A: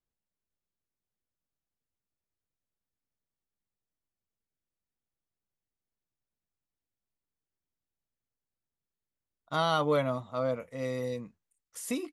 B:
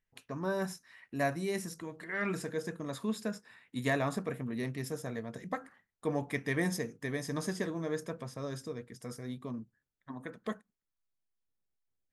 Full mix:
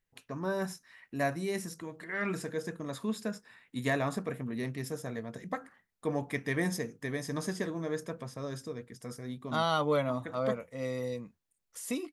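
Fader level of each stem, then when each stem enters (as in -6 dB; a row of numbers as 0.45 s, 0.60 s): -1.5 dB, +0.5 dB; 0.00 s, 0.00 s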